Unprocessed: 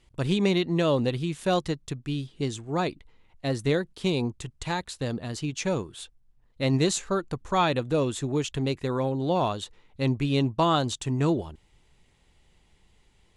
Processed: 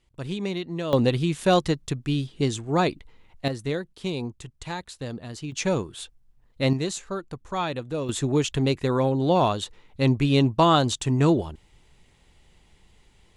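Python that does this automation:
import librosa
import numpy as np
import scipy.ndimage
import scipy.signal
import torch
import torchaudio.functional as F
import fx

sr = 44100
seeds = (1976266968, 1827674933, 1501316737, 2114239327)

y = fx.gain(x, sr, db=fx.steps((0.0, -6.0), (0.93, 5.0), (3.48, -3.5), (5.52, 3.0), (6.73, -4.5), (8.09, 4.5)))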